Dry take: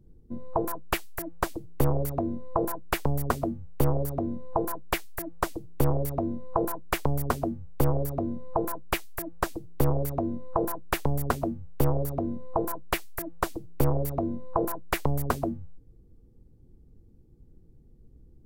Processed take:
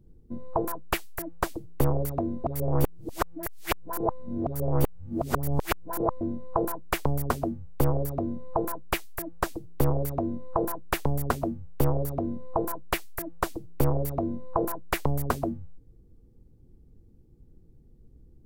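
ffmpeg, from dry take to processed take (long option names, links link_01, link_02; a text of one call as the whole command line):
ffmpeg -i in.wav -filter_complex "[0:a]asplit=3[link_01][link_02][link_03];[link_01]atrim=end=2.442[link_04];[link_02]atrim=start=2.438:end=6.212,asetpts=PTS-STARTPTS,areverse[link_05];[link_03]atrim=start=6.208[link_06];[link_04][link_05]acrossfade=duration=0.004:curve1=hsin:curve2=hsin[link_07];[link_07][link_06]acrossfade=duration=0.004:curve1=hsin:curve2=hsin" out.wav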